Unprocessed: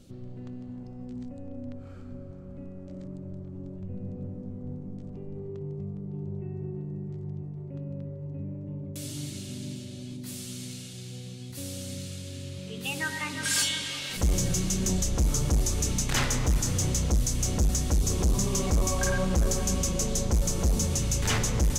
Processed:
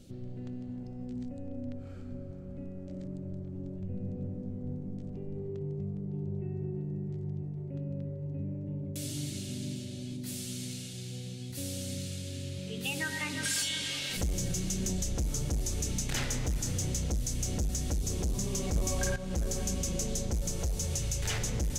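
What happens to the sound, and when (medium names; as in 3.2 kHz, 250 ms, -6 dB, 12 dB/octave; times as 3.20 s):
18.76–19.16 s: gain +12 dB
20.57–21.43 s: peaking EQ 240 Hz -10 dB
whole clip: peaking EQ 1.1 kHz -7 dB 0.65 oct; compression, threshold -29 dBFS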